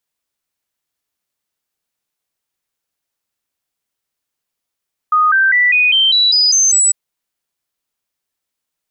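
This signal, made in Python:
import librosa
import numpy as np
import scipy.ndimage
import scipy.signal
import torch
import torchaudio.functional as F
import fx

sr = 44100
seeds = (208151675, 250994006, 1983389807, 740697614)

y = fx.stepped_sweep(sr, from_hz=1240.0, direction='up', per_octave=3, tones=9, dwell_s=0.2, gap_s=0.0, level_db=-8.5)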